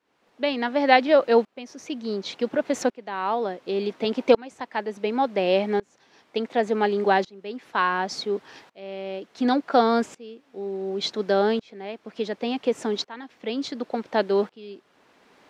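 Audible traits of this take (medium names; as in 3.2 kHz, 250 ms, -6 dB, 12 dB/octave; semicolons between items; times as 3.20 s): tremolo saw up 0.69 Hz, depth 95%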